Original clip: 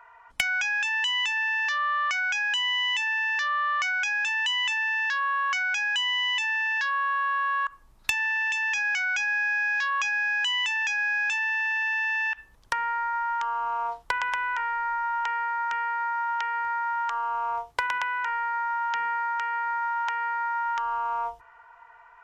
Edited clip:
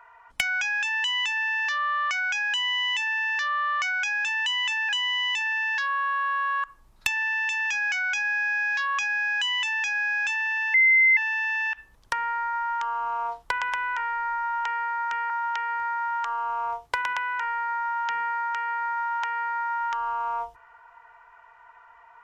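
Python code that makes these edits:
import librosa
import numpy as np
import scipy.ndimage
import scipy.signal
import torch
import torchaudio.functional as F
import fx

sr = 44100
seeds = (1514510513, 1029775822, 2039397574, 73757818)

y = fx.edit(x, sr, fx.cut(start_s=4.89, length_s=1.03),
    fx.insert_tone(at_s=11.77, length_s=0.43, hz=2070.0, db=-14.5),
    fx.cut(start_s=15.9, length_s=0.25), tone=tone)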